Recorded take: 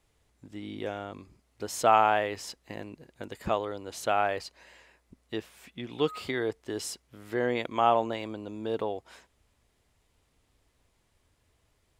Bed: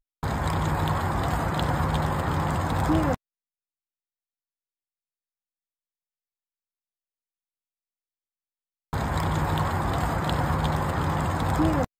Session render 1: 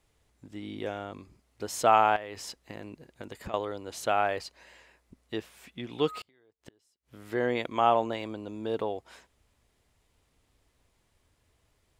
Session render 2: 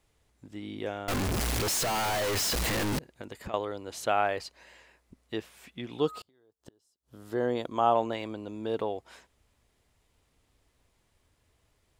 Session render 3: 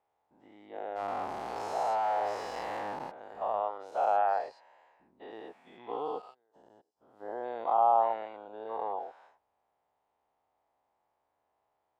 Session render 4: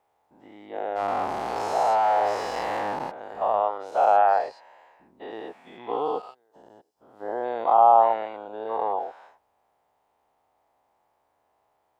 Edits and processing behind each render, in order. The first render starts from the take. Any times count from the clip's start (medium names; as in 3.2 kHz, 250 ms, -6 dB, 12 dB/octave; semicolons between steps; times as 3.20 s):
2.16–3.54 s: compression 10:1, threshold -34 dBFS; 6.18–7.21 s: inverted gate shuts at -31 dBFS, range -35 dB
1.08–2.99 s: one-bit comparator; 5.98–7.95 s: peaking EQ 2.2 kHz -13 dB 0.73 oct
every event in the spectrogram widened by 240 ms; band-pass filter 800 Hz, Q 3.9
trim +8.5 dB